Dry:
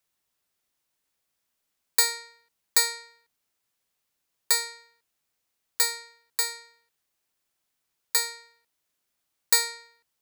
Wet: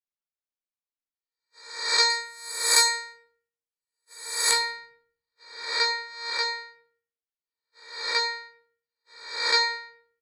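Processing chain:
peak hold with a rise ahead of every peak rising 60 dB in 0.77 s
noise gate −50 dBFS, range −26 dB
low-pass filter 5,900 Hz 24 dB per octave, from 0:02.10 11,000 Hz, from 0:04.51 4,700 Hz
low-shelf EQ 220 Hz −4 dB
double-tracking delay 15 ms −6.5 dB
rectangular room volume 62 cubic metres, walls mixed, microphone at 0.54 metres

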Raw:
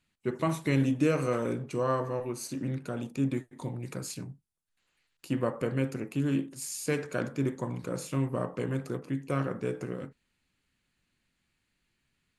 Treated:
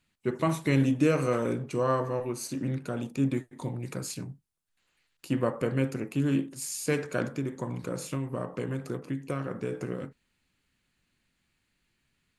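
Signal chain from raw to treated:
0:07.25–0:09.72: downward compressor, threshold −30 dBFS, peak gain reduction 7 dB
level +2 dB

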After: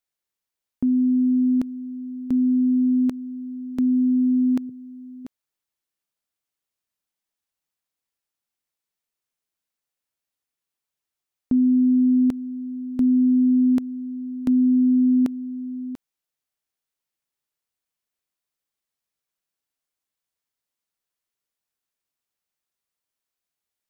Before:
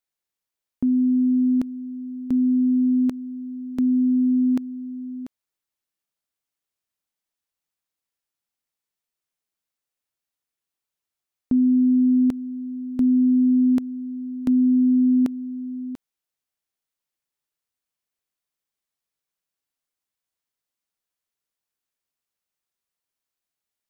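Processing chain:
0:04.69–0:05.25: octave-band graphic EQ 125/250/500 Hz +11/−11/+10 dB

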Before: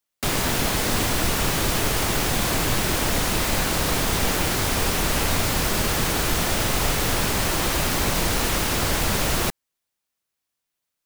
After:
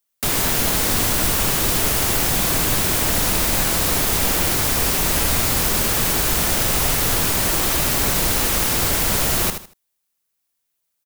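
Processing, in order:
high-shelf EQ 7,800 Hz +9.5 dB
repeating echo 78 ms, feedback 26%, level −8.5 dB

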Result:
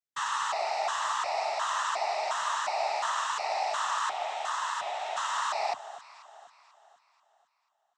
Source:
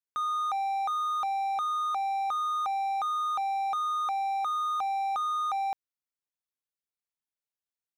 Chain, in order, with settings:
0:04.09–0:05.17: parametric band 560 Hz −5 dB 1.2 octaves
in parallel at −2 dB: brickwall limiter −36.5 dBFS, peak gain reduction 11.5 dB
on the sum: harmonic generator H 3 −17 dB, 6 −21 dB, 8 −16 dB, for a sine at −23 dBFS
cochlear-implant simulation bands 12
pitch vibrato 3 Hz 11 cents
on a send: delay that swaps between a low-pass and a high-pass 244 ms, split 1,300 Hz, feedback 62%, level −13 dB
on the sum: level −2 dB

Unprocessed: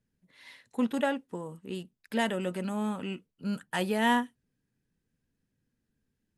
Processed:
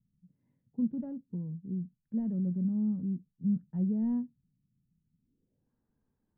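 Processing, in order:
hard clipping −18 dBFS, distortion −23 dB
low-pass filter sweep 170 Hz → 980 Hz, 0:05.13–0:05.71

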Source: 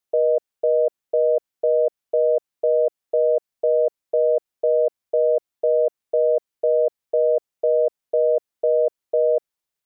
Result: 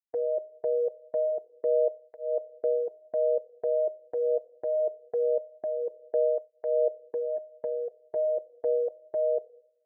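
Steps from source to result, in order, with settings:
noise gate −25 dBFS, range −23 dB
0:07.36–0:08.16: downward compressor, threshold −21 dBFS, peak gain reduction 6 dB
on a send at −16 dB: high-pass filter 320 Hz 24 dB per octave + convolution reverb RT60 0.65 s, pre-delay 3 ms
on the sum: through-zero flanger with one copy inverted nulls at 0.23 Hz, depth 5.2 ms
level −6 dB

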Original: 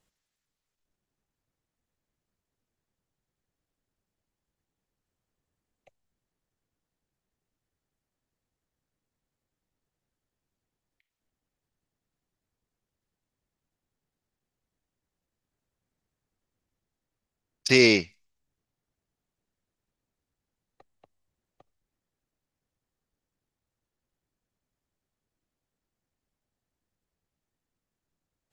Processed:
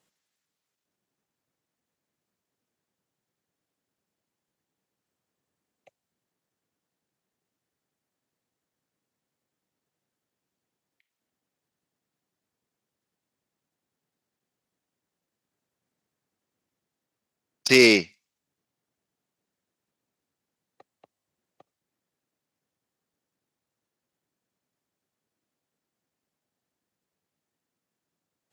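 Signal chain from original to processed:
stylus tracing distortion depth 0.024 ms
high-pass filter 160 Hz 12 dB per octave
level +3 dB

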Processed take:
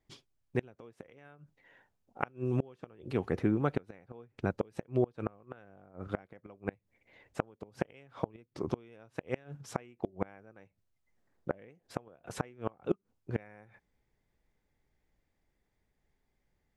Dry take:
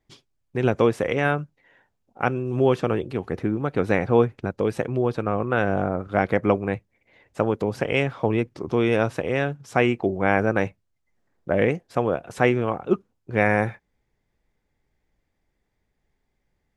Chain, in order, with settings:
gate with flip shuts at −12 dBFS, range −30 dB
level −4 dB

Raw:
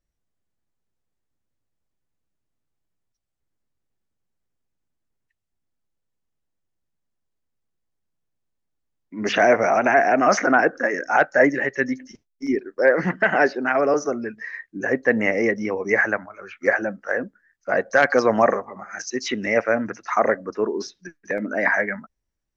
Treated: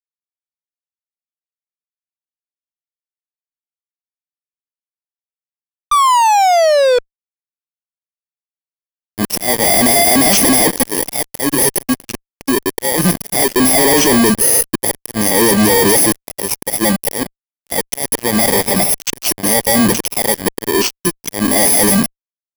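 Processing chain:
samples in bit-reversed order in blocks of 32 samples
dynamic equaliser 610 Hz, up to −4 dB, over −34 dBFS, Q 2.2
downward compressor 16 to 1, threshold −22 dBFS, peak gain reduction 12 dB
volume swells 766 ms
automatic gain control gain up to 9.5 dB
sound drawn into the spectrogram fall, 0:05.91–0:06.99, 480–1,200 Hz −29 dBFS
fuzz pedal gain 37 dB, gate −38 dBFS
level +4.5 dB

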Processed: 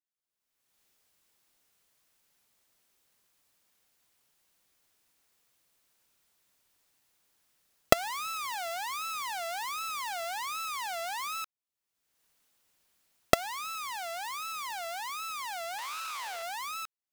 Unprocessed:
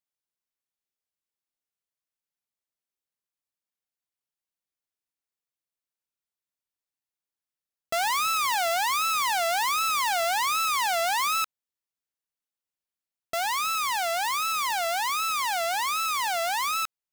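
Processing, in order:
camcorder AGC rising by 38 dB per second
0:15.78–0:16.43: highs frequency-modulated by the lows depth 0.2 ms
level −10.5 dB

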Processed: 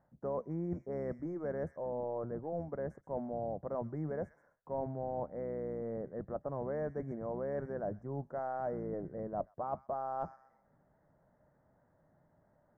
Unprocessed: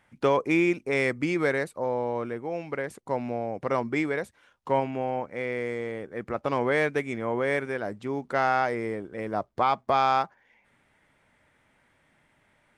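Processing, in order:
sub-octave generator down 1 octave, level −6 dB
elliptic band-stop filter 1,700–5,800 Hz, stop band 50 dB
high-frequency loss of the air 490 metres
delay with a high-pass on its return 130 ms, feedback 34%, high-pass 2,800 Hz, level −8.5 dB
reversed playback
downward compressor 6 to 1, threshold −34 dBFS, peak gain reduction 13.5 dB
reversed playback
graphic EQ with 15 bands 160 Hz +7 dB, 630 Hz +9 dB, 1,600 Hz −6 dB, 6,300 Hz +11 dB
level −5 dB

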